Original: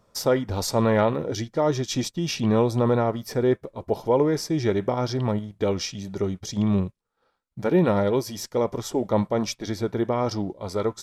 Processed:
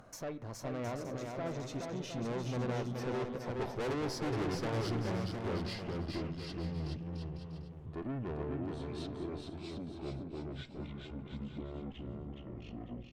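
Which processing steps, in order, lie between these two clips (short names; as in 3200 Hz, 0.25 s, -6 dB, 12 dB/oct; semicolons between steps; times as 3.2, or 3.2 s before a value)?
speed glide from 114% -> 54%; Doppler pass-by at 4.41, 9 m/s, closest 6.1 m; high shelf 3700 Hz -11.5 dB; upward compressor, threshold -39 dBFS; tube stage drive 36 dB, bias 0.4; bouncing-ball echo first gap 0.42 s, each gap 0.7×, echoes 5; on a send at -16.5 dB: reverb RT60 0.90 s, pre-delay 3 ms; on the sum: Doppler distortion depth 0.13 ms; gain +1 dB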